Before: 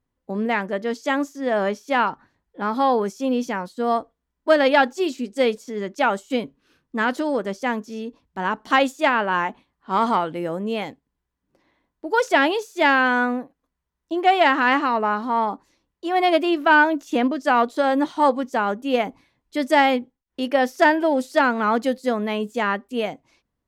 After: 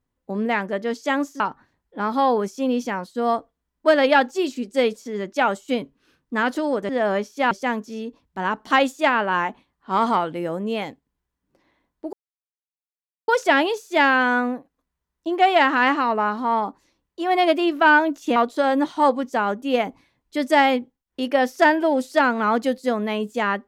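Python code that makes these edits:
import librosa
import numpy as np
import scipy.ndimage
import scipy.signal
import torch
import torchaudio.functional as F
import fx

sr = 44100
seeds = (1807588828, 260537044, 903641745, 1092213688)

y = fx.edit(x, sr, fx.move(start_s=1.4, length_s=0.62, to_s=7.51),
    fx.insert_silence(at_s=12.13, length_s=1.15),
    fx.cut(start_s=17.21, length_s=0.35), tone=tone)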